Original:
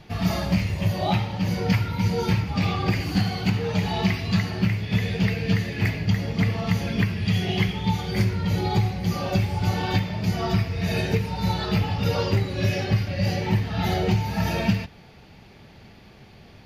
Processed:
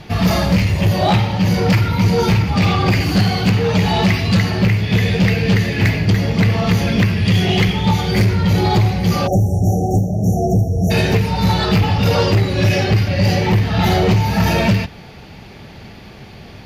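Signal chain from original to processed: added harmonics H 5 -11 dB, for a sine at -8.5 dBFS; spectral delete 9.27–10.91, 820–5500 Hz; gain +3.5 dB

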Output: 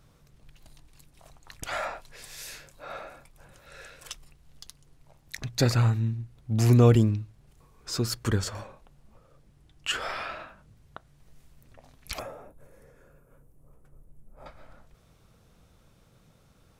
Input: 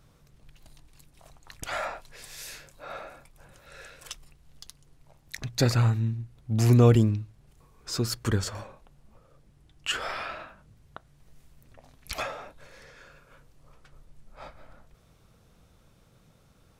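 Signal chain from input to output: 12.19–14.46 EQ curve 420 Hz 0 dB, 4400 Hz -22 dB, 11000 Hz +1 dB

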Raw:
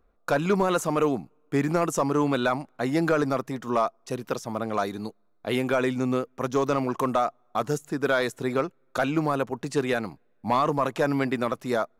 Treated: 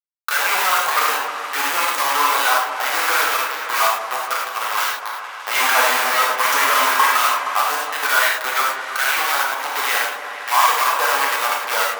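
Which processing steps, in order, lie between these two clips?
5.55–7.07 sample leveller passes 3; bit-crush 4-bit; fuzz box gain 44 dB, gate -50 dBFS; LFO high-pass sine 6.7 Hz 900–1800 Hz; on a send: repeats that get brighter 0.156 s, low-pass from 750 Hz, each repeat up 1 oct, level -6 dB; on the sum: non-linear reverb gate 0.13 s flat, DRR -3 dB; gain -3 dB

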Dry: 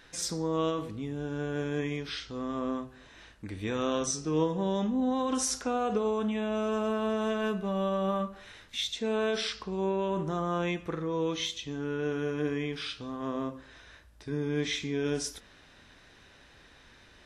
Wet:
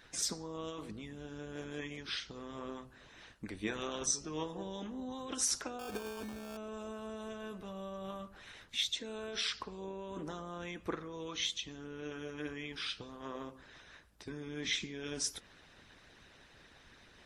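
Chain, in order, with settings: harmonic-percussive split harmonic -16 dB; 5.79–6.57 sample-rate reducer 2000 Hz, jitter 0%; gain +1.5 dB

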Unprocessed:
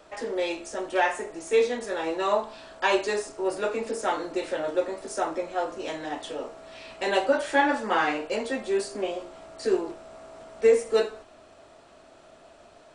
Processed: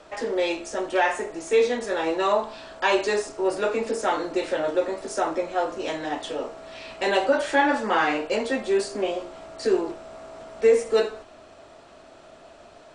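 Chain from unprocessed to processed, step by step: LPF 8600 Hz 12 dB/oct; in parallel at -1 dB: limiter -19 dBFS, peak gain reduction 9 dB; on the sum: gain -1.5 dB

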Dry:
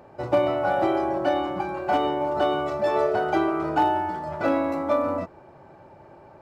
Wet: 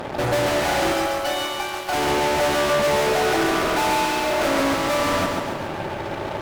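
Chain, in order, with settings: 0.92–1.93 differentiator; 3.12–4.6 elliptic band-pass 230–1800 Hz; fuzz box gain 45 dB, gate -52 dBFS; lo-fi delay 0.139 s, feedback 55%, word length 8-bit, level -4 dB; gain -8 dB

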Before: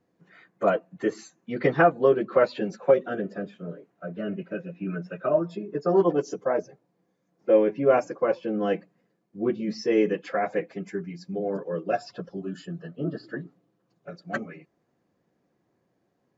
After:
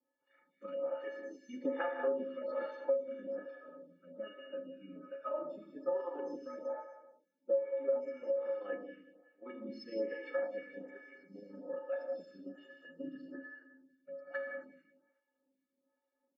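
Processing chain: HPF 200 Hz 24 dB/oct; feedback echo 0.185 s, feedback 34%, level -12 dB; AM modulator 26 Hz, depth 35%; LPF 2800 Hz 12 dB/oct; metallic resonator 260 Hz, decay 0.41 s, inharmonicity 0.03; non-linear reverb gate 0.3 s flat, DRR 2.5 dB; compressor 16:1, threshold -36 dBFS, peak gain reduction 15 dB; photocell phaser 1.2 Hz; gain +8 dB

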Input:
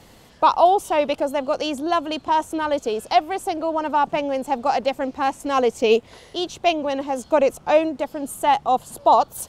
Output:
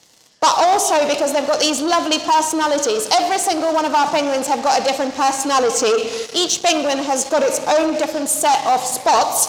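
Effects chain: low shelf 180 Hz -8.5 dB; shoebox room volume 1700 m³, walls mixed, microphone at 0.53 m; sample leveller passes 3; HPF 82 Hz 6 dB/oct; bell 6000 Hz +14 dB 1.4 oct; core saturation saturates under 1700 Hz; gain -3 dB

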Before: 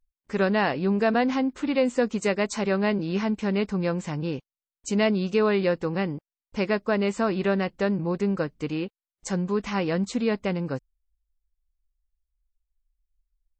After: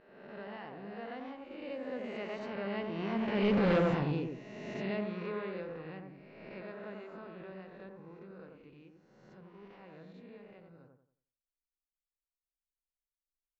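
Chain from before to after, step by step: spectral swells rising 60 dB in 1.38 s; Doppler pass-by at 3.72, 11 m/s, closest 1.8 m; on a send: dark delay 90 ms, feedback 33%, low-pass 1400 Hz, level -3 dB; on the sum: overloaded stage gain 23.5 dB; LPF 3900 Hz 24 dB/oct

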